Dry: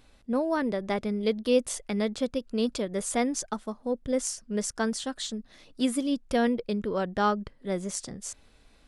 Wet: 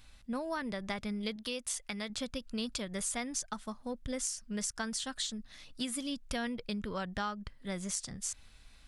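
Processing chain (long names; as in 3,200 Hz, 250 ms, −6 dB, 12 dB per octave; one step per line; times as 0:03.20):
parametric band 410 Hz −14 dB 2.1 octaves
downward compressor 5 to 1, threshold −36 dBFS, peak gain reduction 10 dB
0:01.36–0:02.10: low-shelf EQ 320 Hz −7 dB
level +3 dB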